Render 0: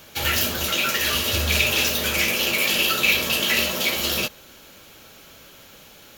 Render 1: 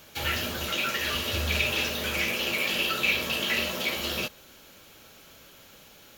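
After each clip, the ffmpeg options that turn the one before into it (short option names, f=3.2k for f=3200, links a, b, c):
-filter_complex "[0:a]acrossover=split=4000[a][b];[b]acompressor=threshold=-31dB:ratio=4:attack=1:release=60[c];[a][c]amix=inputs=2:normalize=0,volume=-5dB"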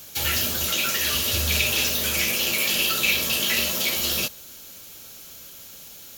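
-af "bass=f=250:g=3,treble=f=4k:g=14"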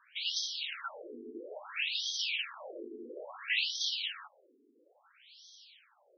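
-af "afftfilt=real='re*between(b*sr/1024,310*pow(4500/310,0.5+0.5*sin(2*PI*0.59*pts/sr))/1.41,310*pow(4500/310,0.5+0.5*sin(2*PI*0.59*pts/sr))*1.41)':imag='im*between(b*sr/1024,310*pow(4500/310,0.5+0.5*sin(2*PI*0.59*pts/sr))/1.41,310*pow(4500/310,0.5+0.5*sin(2*PI*0.59*pts/sr))*1.41)':win_size=1024:overlap=0.75,volume=-5dB"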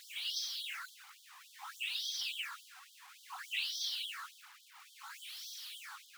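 -af "aeval=exprs='val(0)+0.5*0.0158*sgn(val(0))':c=same,aphaser=in_gain=1:out_gain=1:delay=3.9:decay=0.34:speed=0.9:type=triangular,afftfilt=real='re*gte(b*sr/1024,710*pow(3100/710,0.5+0.5*sin(2*PI*3.5*pts/sr)))':imag='im*gte(b*sr/1024,710*pow(3100/710,0.5+0.5*sin(2*PI*3.5*pts/sr)))':win_size=1024:overlap=0.75,volume=-7dB"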